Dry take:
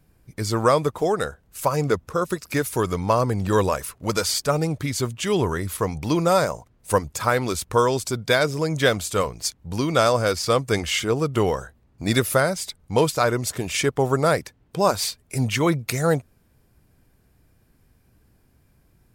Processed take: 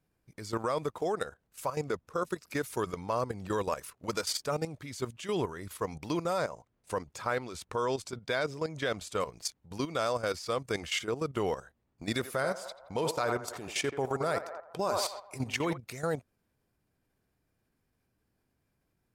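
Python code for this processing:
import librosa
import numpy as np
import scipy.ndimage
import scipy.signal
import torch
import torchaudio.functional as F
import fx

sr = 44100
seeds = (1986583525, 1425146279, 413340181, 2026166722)

y = fx.high_shelf(x, sr, hz=9700.0, db=-11.0, at=(6.38, 9.2))
y = fx.echo_banded(y, sr, ms=85, feedback_pct=64, hz=860.0, wet_db=-6, at=(12.18, 15.76), fade=0.02)
y = fx.low_shelf(y, sr, hz=130.0, db=-10.0)
y = fx.level_steps(y, sr, step_db=12)
y = fx.high_shelf(y, sr, hz=9200.0, db=-6.5)
y = F.gain(torch.from_numpy(y), -5.5).numpy()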